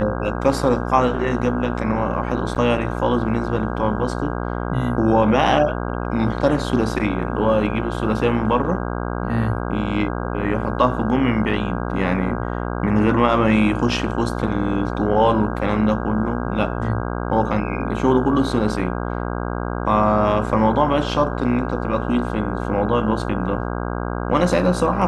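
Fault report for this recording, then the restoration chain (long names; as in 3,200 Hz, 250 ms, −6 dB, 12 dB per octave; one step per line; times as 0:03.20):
mains buzz 60 Hz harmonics 27 −25 dBFS
0:02.55–0:02.56: drop-out 6.8 ms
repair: hum removal 60 Hz, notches 27
repair the gap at 0:02.55, 6.8 ms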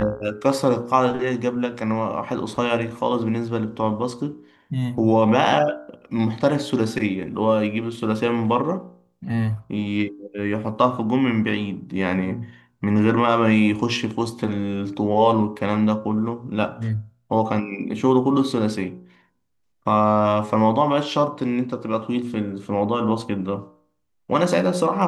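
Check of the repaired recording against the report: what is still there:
none of them is left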